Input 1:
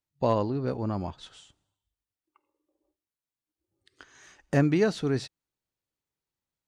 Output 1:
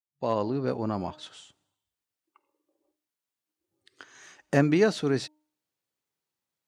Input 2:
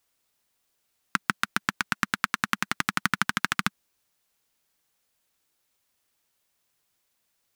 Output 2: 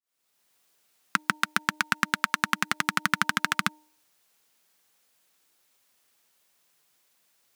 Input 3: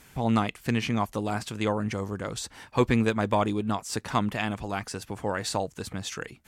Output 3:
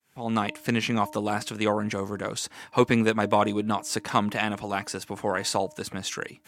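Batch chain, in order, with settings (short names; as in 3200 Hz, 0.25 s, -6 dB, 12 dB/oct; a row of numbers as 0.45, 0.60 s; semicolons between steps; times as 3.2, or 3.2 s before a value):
opening faded in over 0.54 s; HPF 110 Hz 12 dB/oct; low shelf 190 Hz -5 dB; de-hum 305.3 Hz, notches 3; maximiser +7 dB; match loudness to -27 LUFS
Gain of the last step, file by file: -4.0, -0.5, -3.5 dB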